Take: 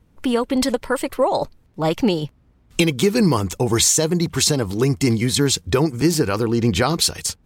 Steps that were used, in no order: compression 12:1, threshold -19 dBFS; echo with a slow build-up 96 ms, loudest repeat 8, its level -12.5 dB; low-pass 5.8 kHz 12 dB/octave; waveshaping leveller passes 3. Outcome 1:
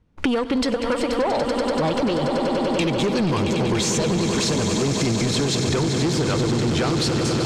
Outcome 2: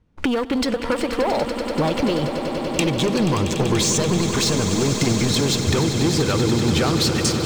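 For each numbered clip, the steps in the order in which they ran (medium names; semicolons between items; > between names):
echo with a slow build-up > waveshaping leveller > low-pass > compression; low-pass > waveshaping leveller > compression > echo with a slow build-up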